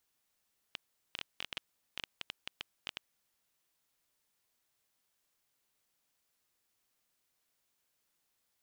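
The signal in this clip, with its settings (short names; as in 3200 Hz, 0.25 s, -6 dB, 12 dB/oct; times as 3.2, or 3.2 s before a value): random clicks 8.4/s -20.5 dBFS 2.37 s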